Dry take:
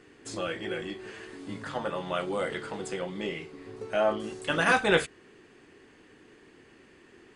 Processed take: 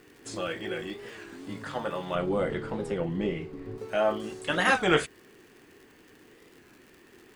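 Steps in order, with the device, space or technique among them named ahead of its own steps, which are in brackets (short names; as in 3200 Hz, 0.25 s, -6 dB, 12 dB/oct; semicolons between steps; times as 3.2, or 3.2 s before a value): warped LP (record warp 33 1/3 rpm, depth 160 cents; crackle 100/s -44 dBFS; white noise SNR 39 dB); 2.15–3.78 tilt -3 dB/oct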